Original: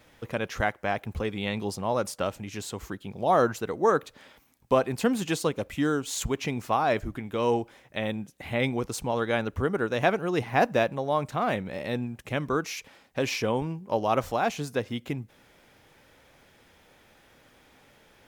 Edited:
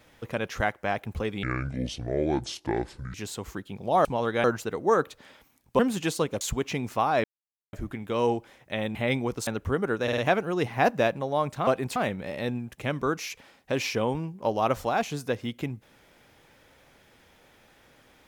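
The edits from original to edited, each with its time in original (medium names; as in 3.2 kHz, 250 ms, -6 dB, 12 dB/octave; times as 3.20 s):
1.43–2.49 s: speed 62%
4.75–5.04 s: move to 11.43 s
5.66–6.14 s: delete
6.97 s: insert silence 0.49 s
8.19–8.47 s: delete
8.99–9.38 s: move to 3.40 s
9.94 s: stutter 0.05 s, 4 plays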